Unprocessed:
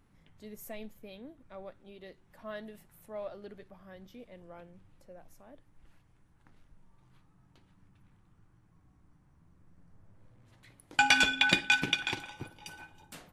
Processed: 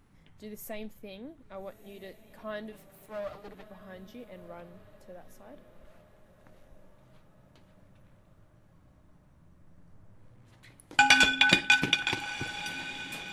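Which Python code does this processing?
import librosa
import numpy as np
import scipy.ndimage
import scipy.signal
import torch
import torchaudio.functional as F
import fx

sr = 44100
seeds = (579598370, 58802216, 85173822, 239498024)

p1 = fx.lower_of_two(x, sr, delay_ms=6.6, at=(2.72, 3.71))
p2 = p1 + fx.echo_diffused(p1, sr, ms=1329, feedback_pct=53, wet_db=-15.0, dry=0)
y = F.gain(torch.from_numpy(p2), 3.5).numpy()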